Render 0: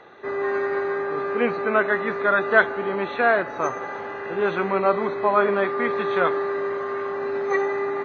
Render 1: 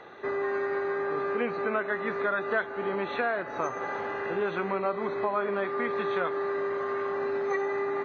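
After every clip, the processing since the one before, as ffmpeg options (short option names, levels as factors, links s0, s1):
-af "acompressor=threshold=0.0398:ratio=3"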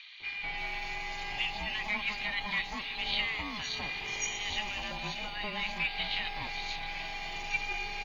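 -filter_complex "[0:a]aeval=exprs='val(0)*sin(2*PI*420*n/s)':c=same,acrossover=split=1300|4300[s0][s1][s2];[s0]adelay=200[s3];[s2]adelay=580[s4];[s3][s1][s4]amix=inputs=3:normalize=0,aexciter=amount=13.9:drive=8:freq=2400,volume=0.447"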